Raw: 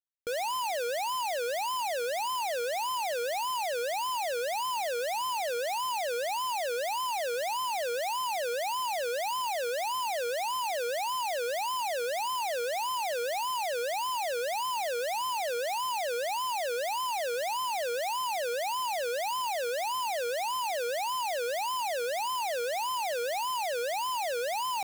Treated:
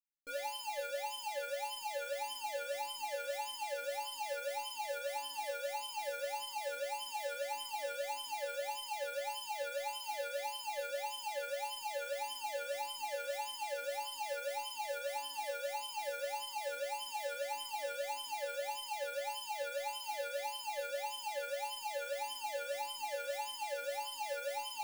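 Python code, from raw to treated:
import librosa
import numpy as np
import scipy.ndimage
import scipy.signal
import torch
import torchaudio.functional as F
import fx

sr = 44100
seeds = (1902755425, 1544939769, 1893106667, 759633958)

y = fx.stiff_resonator(x, sr, f0_hz=280.0, decay_s=0.43, stiffness=0.002)
y = F.gain(torch.from_numpy(y), 7.0).numpy()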